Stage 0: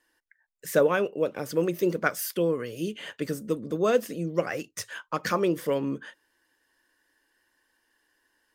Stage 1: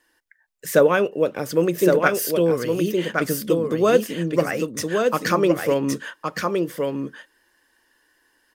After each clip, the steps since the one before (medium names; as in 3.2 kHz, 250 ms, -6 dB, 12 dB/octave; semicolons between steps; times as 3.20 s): delay 1116 ms -4 dB; trim +6 dB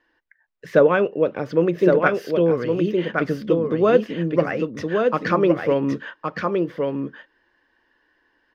distance through air 280 m; trim +1.5 dB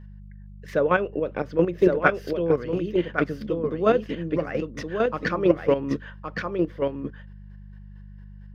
square tremolo 4.4 Hz, depth 60%, duty 25%; mains buzz 50 Hz, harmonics 4, -43 dBFS -5 dB/octave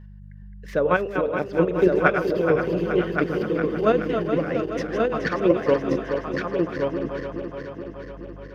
backward echo that repeats 212 ms, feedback 81%, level -7.5 dB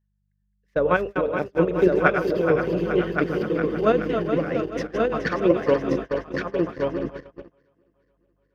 gate -27 dBFS, range -30 dB